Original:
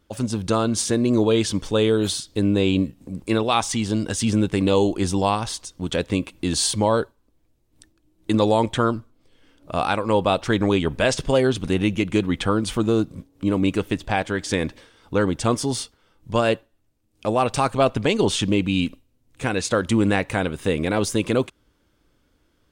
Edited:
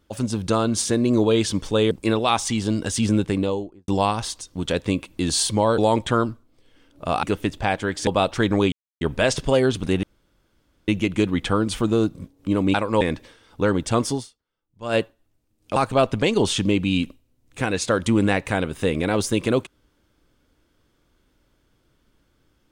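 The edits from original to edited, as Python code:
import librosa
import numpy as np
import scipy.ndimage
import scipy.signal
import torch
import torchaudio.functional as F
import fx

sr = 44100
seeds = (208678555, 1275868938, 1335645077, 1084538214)

y = fx.studio_fade_out(x, sr, start_s=4.4, length_s=0.72)
y = fx.edit(y, sr, fx.cut(start_s=1.91, length_s=1.24),
    fx.cut(start_s=7.02, length_s=1.43),
    fx.swap(start_s=9.9, length_s=0.27, other_s=13.7, other_length_s=0.84),
    fx.insert_silence(at_s=10.82, length_s=0.29),
    fx.insert_room_tone(at_s=11.84, length_s=0.85),
    fx.fade_down_up(start_s=15.67, length_s=0.81, db=-22.0, fade_s=0.17, curve='qua'),
    fx.cut(start_s=17.29, length_s=0.3), tone=tone)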